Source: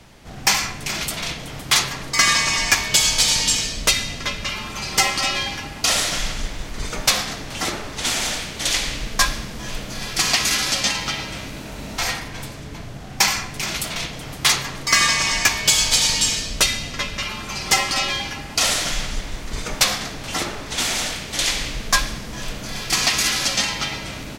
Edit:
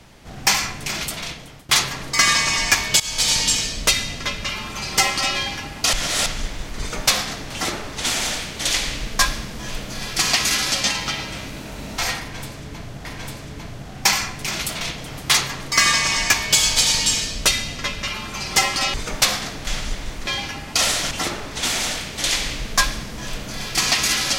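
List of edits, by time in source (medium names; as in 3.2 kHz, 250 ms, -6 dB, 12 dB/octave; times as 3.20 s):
0.72–1.69 s: fade out equal-power, to -17 dB
3.00–3.31 s: fade in, from -17.5 dB
5.93–6.26 s: reverse
12.20–13.05 s: loop, 2 plays
18.09–18.93 s: swap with 19.53–20.26 s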